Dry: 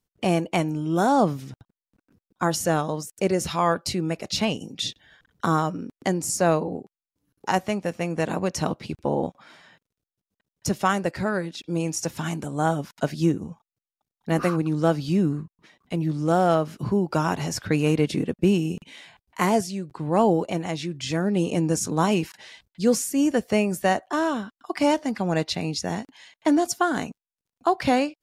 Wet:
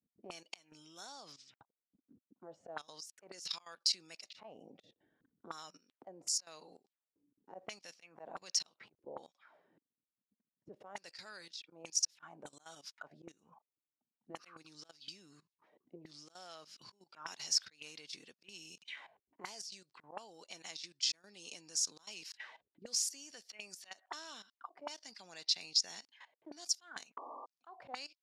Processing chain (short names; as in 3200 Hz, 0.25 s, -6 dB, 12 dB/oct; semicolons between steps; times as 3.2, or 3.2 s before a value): auto swell 0.309 s; level quantiser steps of 16 dB; 27.17–27.46 painted sound noise 230–1200 Hz -29 dBFS; auto-wah 230–5000 Hz, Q 3.1, up, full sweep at -34.5 dBFS; 1.32–2.69 Chebyshev low-pass 8300 Hz, order 4; gain +6.5 dB